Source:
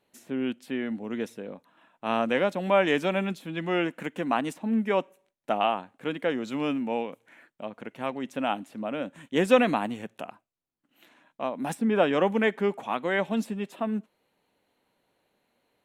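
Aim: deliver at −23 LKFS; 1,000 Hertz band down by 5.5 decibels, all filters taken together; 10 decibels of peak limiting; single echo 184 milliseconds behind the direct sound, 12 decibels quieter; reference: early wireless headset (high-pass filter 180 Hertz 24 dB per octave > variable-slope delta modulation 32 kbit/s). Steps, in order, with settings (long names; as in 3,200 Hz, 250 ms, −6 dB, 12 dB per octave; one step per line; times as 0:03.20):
parametric band 1,000 Hz −8 dB
brickwall limiter −18.5 dBFS
high-pass filter 180 Hz 24 dB per octave
single-tap delay 184 ms −12 dB
variable-slope delta modulation 32 kbit/s
level +9 dB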